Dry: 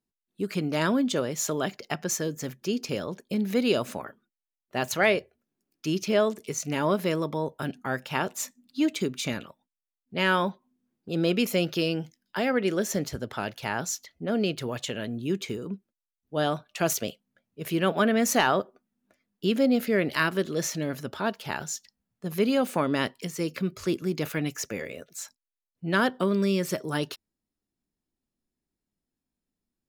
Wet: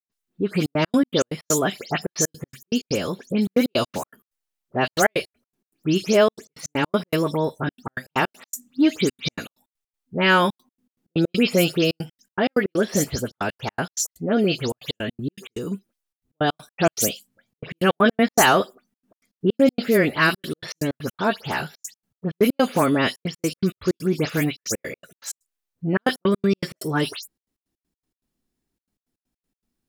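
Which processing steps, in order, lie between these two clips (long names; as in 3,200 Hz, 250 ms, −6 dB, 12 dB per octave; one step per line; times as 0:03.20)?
every frequency bin delayed by itself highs late, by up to 119 ms
gate pattern ".xxxxxx.x.x.x.x" 160 BPM −60 dB
level +7 dB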